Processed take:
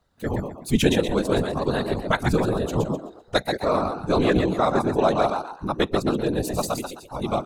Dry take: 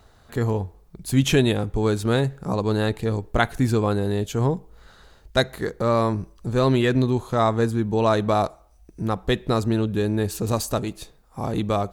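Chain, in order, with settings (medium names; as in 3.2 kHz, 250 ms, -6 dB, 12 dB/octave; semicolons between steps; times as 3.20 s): spectral noise reduction 14 dB; frequency-shifting echo 203 ms, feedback 31%, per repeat +84 Hz, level -5.5 dB; tempo 1.6×; whisper effect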